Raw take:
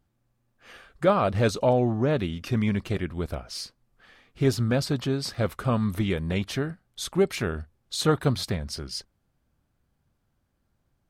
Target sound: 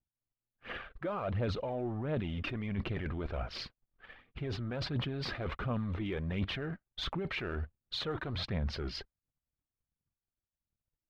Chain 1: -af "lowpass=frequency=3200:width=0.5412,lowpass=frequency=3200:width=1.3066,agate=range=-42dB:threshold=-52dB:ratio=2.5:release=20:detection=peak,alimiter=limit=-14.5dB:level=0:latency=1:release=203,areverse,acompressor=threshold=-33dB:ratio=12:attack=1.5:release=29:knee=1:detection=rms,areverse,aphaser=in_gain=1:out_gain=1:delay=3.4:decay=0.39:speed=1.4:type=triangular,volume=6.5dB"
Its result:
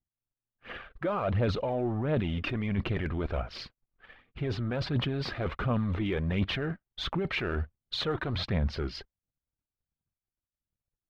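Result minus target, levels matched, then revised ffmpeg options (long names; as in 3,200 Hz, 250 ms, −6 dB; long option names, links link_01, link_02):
downward compressor: peak gain reduction −6 dB
-af "lowpass=frequency=3200:width=0.5412,lowpass=frequency=3200:width=1.3066,agate=range=-42dB:threshold=-52dB:ratio=2.5:release=20:detection=peak,alimiter=limit=-14.5dB:level=0:latency=1:release=203,areverse,acompressor=threshold=-39.5dB:ratio=12:attack=1.5:release=29:knee=1:detection=rms,areverse,aphaser=in_gain=1:out_gain=1:delay=3.4:decay=0.39:speed=1.4:type=triangular,volume=6.5dB"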